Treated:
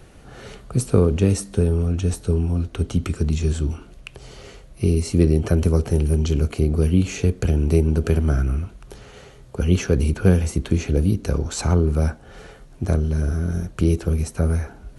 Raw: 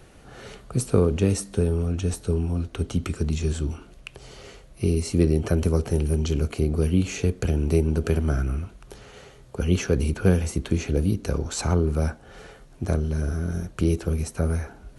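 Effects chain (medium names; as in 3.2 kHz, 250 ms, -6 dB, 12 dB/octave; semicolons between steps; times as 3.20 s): bass shelf 220 Hz +3.5 dB; trim +1.5 dB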